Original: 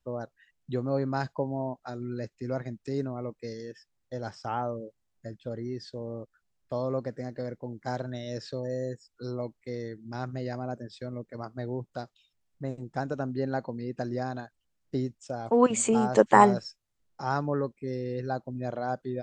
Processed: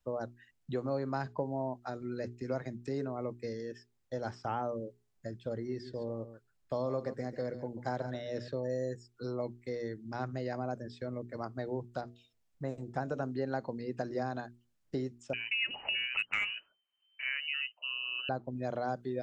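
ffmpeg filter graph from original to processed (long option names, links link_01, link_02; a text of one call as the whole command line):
ffmpeg -i in.wav -filter_complex "[0:a]asettb=1/sr,asplit=3[link_01][link_02][link_03];[link_01]atrim=end=5.564[link_04];[link_02]atrim=start=5.56:end=8.48,asetpts=PTS-STARTPTS,afade=type=in:duration=0.004:curve=qsin,afade=type=out:start_time=2.916:duration=0.004:curve=qsin,bandreject=frequency=5900:width=24,aecho=1:1:139:0.224,atrim=end_sample=128772[link_05];[link_03]atrim=start=8.476[link_06];[link_04][link_05]acrossfade=duration=0.004:curve1=hsin:curve2=qsin[link_07];[link_07][link_06]acrossfade=duration=0.004:curve1=qsin:curve2=hsin,asettb=1/sr,asplit=3[link_08][link_09][link_10];[link_08]atrim=end=12.014[link_11];[link_09]atrim=start=12.01:end=13.23,asetpts=PTS-STARTPTS,afade=type=in:duration=0.004:curve=qsin,afade=type=out:start_time=1.216:duration=0.004:curve=qsin,bandreject=frequency=94.27:width_type=h:width=4,bandreject=frequency=188.54:width_type=h:width=4,bandreject=frequency=282.81:width_type=h:width=4,bandreject=frequency=377.08:width_type=h:width=4,bandreject=frequency=471.35:width_type=h:width=4,bandreject=frequency=565.62:width_type=h:width=4,bandreject=frequency=659.89:width_type=h:width=4,acrossover=split=2500[link_12][link_13];[link_13]acompressor=threshold=-58dB:ratio=4:attack=1:release=60[link_14];[link_12][link_14]amix=inputs=2:normalize=0[link_15];[link_10]atrim=start=13.226[link_16];[link_11][link_15]acrossfade=duration=0.004:curve1=hsin:curve2=qsin[link_17];[link_17][link_16]acrossfade=duration=0.004:curve1=qsin:curve2=hsin,asettb=1/sr,asplit=3[link_18][link_19][link_20];[link_18]atrim=end=15.334[link_21];[link_19]atrim=start=15.33:end=18.29,asetpts=PTS-STARTPTS,afade=type=in:duration=0.004:curve=qsin,afade=type=out:start_time=2.956:duration=0.004:curve=qsin,lowpass=frequency=2600:width_type=q:width=0.5098,lowpass=frequency=2600:width_type=q:width=0.6013,lowpass=frequency=2600:width_type=q:width=0.9,lowpass=frequency=2600:width_type=q:width=2.563,afreqshift=-3100,asoftclip=type=hard:threshold=-9.5dB[link_22];[link_20]atrim=start=18.286[link_23];[link_21][link_22]acrossfade=duration=0.004:curve1=hsin:curve2=qsin[link_24];[link_24][link_23]acrossfade=duration=0.004:curve1=qsin:curve2=hsin,bandreject=frequency=60:width_type=h:width=6,bandreject=frequency=120:width_type=h:width=6,bandreject=frequency=180:width_type=h:width=6,bandreject=frequency=240:width_type=h:width=6,bandreject=frequency=300:width_type=h:width=6,bandreject=frequency=360:width_type=h:width=6,bandreject=frequency=420:width_type=h:width=6,acrossover=split=400|2900[link_25][link_26][link_27];[link_25]acompressor=threshold=-37dB:ratio=4[link_28];[link_26]acompressor=threshold=-33dB:ratio=4[link_29];[link_27]acompressor=threshold=-58dB:ratio=4[link_30];[link_28][link_29][link_30]amix=inputs=3:normalize=0" out.wav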